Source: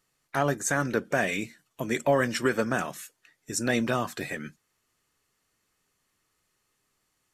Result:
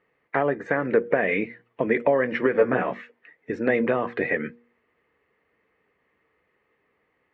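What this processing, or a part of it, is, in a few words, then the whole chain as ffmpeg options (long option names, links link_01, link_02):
bass amplifier: -filter_complex "[0:a]acompressor=threshold=-27dB:ratio=6,highpass=76,equalizer=frequency=110:width_type=q:width=4:gain=-7,equalizer=frequency=150:width_type=q:width=4:gain=-5,equalizer=frequency=470:width_type=q:width=4:gain=10,equalizer=frequency=1400:width_type=q:width=4:gain=-5,equalizer=frequency=2000:width_type=q:width=4:gain=6,lowpass=frequency=2300:width=0.5412,lowpass=frequency=2300:width=1.3066,bandreject=frequency=118.9:width_type=h:width=4,bandreject=frequency=237.8:width_type=h:width=4,bandreject=frequency=356.7:width_type=h:width=4,bandreject=frequency=475.6:width_type=h:width=4,asettb=1/sr,asplit=3[link_01][link_02][link_03];[link_01]atrim=end=2.534[link_04];[link_02]atrim=start=2.53:end=3.02,asetpts=PTS-STARTPTS,afade=type=in:duration=0.004:curve=qsin,afade=type=out:start_time=0.486:duration=0.004:curve=qsin,asplit=2[link_05][link_06];[link_06]adelay=16,volume=-2.5dB[link_07];[link_05][link_07]amix=inputs=2:normalize=0,atrim=end_sample=21609[link_08];[link_03]atrim=start=3.016[link_09];[link_04][link_08]acrossfade=duration=0.004:curve1=hsin:curve2=qsin[link_10];[link_10][link_09]acrossfade=duration=0.004:curve1=qsin:curve2=hsin,volume=7.5dB"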